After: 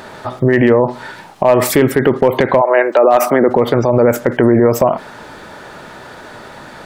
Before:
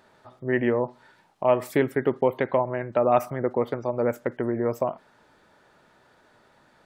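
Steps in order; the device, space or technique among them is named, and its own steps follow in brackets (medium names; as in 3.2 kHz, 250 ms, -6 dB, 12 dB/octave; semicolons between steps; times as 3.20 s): 2.60–3.48 s: high-pass 520 Hz -> 190 Hz 24 dB/octave; loud club master (compression 1.5:1, threshold -27 dBFS, peak gain reduction 5 dB; hard clipper -15.5 dBFS, distortion -25 dB; loudness maximiser +26 dB); trim -1 dB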